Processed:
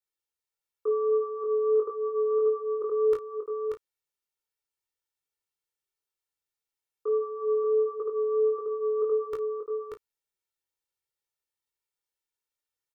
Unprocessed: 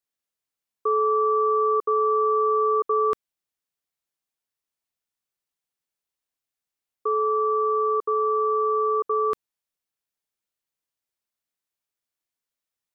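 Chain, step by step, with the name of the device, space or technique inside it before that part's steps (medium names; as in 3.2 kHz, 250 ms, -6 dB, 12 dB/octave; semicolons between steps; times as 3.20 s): 1.75–2.31 s: dynamic bell 840 Hz, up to +4 dB, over -42 dBFS, Q 3.4; comb 2.2 ms, depth 98%; double-tracked vocal (doubling 33 ms -11 dB; chorus 1.5 Hz, delay 19.5 ms, depth 2.1 ms); delay 584 ms -5 dB; trim -4.5 dB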